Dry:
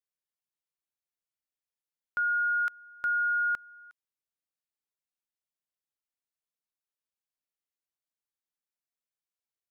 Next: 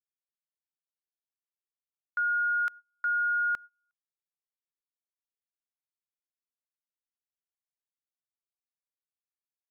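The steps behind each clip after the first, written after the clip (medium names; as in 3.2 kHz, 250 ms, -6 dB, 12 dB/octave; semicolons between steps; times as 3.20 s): gate -41 dBFS, range -29 dB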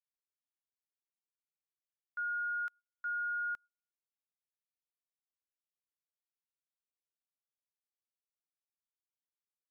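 upward expansion 2.5:1, over -37 dBFS; trim -8.5 dB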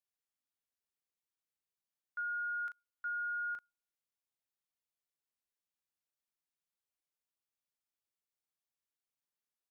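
doubling 38 ms -8 dB; trim -1 dB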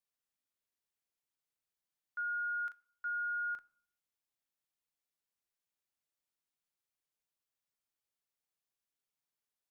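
reverberation RT60 0.65 s, pre-delay 7 ms, DRR 16.5 dB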